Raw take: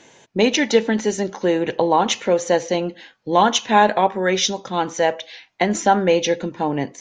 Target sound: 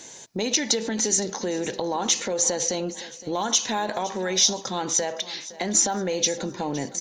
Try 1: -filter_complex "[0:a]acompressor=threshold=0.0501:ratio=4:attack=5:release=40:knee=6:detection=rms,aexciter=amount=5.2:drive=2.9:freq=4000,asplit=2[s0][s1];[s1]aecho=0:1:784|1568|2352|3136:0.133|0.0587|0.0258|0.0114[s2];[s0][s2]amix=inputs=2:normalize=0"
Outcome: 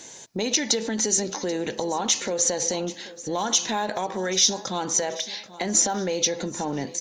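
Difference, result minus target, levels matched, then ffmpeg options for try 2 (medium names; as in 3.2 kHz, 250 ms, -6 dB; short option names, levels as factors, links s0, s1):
echo 270 ms late
-filter_complex "[0:a]acompressor=threshold=0.0501:ratio=4:attack=5:release=40:knee=6:detection=rms,aexciter=amount=5.2:drive=2.9:freq=4000,asplit=2[s0][s1];[s1]aecho=0:1:514|1028|1542|2056:0.133|0.0587|0.0258|0.0114[s2];[s0][s2]amix=inputs=2:normalize=0"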